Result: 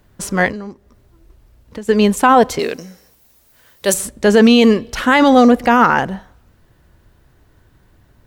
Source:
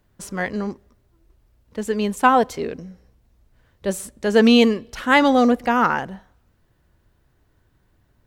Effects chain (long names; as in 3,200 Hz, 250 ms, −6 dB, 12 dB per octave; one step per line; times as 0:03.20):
0:00.51–0:01.89: downward compressor 4 to 1, threshold −39 dBFS, peak gain reduction 14 dB
0:02.59–0:03.94: RIAA equalisation recording
boost into a limiter +11 dB
level −1 dB